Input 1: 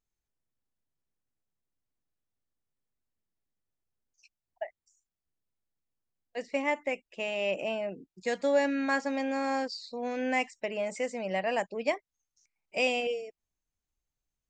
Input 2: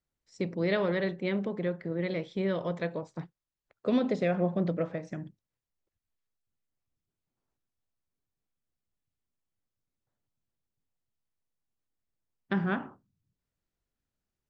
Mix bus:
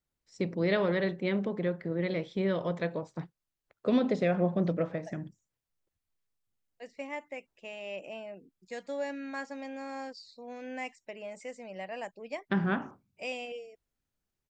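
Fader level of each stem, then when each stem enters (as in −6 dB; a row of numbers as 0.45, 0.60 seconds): −9.5, +0.5 decibels; 0.45, 0.00 seconds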